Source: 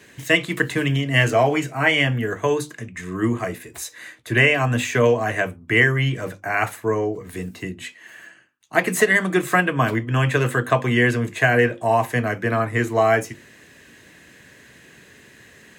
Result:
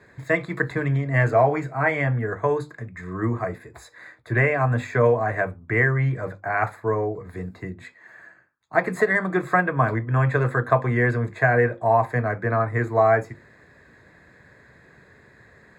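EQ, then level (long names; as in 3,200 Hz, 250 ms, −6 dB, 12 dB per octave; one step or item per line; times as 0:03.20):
moving average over 15 samples
parametric band 270 Hz −8.5 dB 1.4 octaves
+2.5 dB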